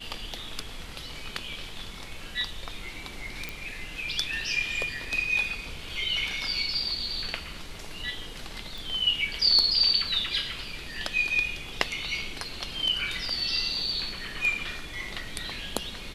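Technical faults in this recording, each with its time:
3.49 s: pop -17 dBFS
8.78 s: pop

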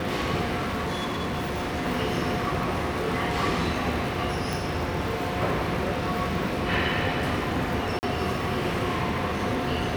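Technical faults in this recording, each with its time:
crackle 60 per s -32 dBFS
0.56–1.85 s: clipped -25 dBFS
4.53 s: pop
7.99–8.03 s: dropout 39 ms

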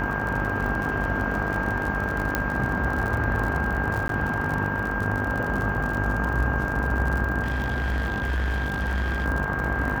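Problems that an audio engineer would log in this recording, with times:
buzz 50 Hz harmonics 35 -31 dBFS
crackle 56 per s -28 dBFS
whine 1.6 kHz -29 dBFS
2.35 s: pop -8 dBFS
4.08–4.09 s: dropout 12 ms
7.43–9.26 s: clipped -22 dBFS

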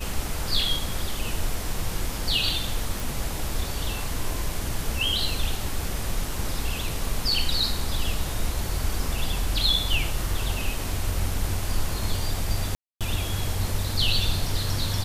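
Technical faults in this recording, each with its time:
3.00 s: pop
12.75–13.01 s: dropout 257 ms

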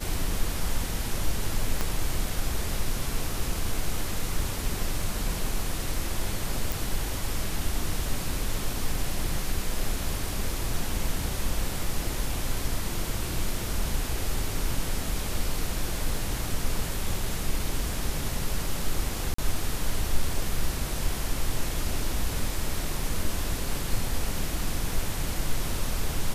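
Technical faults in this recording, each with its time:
1.81 s: pop -12 dBFS
6.72 s: pop
19.34–19.38 s: dropout 44 ms

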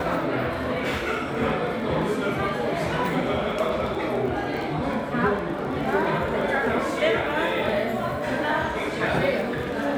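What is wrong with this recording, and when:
crackle 12 per s -31 dBFS

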